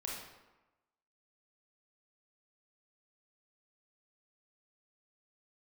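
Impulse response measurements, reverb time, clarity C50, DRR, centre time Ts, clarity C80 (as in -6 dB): 1.1 s, 0.5 dB, -3.5 dB, 63 ms, 4.0 dB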